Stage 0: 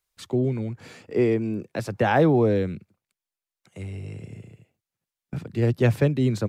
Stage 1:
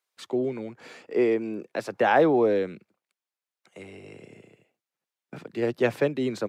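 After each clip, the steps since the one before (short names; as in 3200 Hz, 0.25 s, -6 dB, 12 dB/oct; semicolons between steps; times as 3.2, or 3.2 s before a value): HPF 340 Hz 12 dB/oct; high shelf 5500 Hz -8 dB; gain +1.5 dB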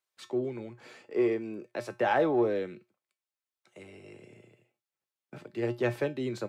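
resonator 120 Hz, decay 0.22 s, harmonics odd, mix 70%; in parallel at -9 dB: soft clip -26.5 dBFS, distortion -12 dB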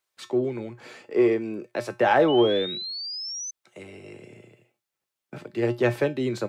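painted sound rise, 2.28–3.51, 2900–6200 Hz -40 dBFS; gain +6.5 dB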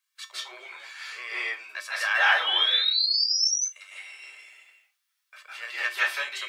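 HPF 1300 Hz 24 dB/oct; reverb RT60 0.25 s, pre-delay 0.152 s, DRR -7 dB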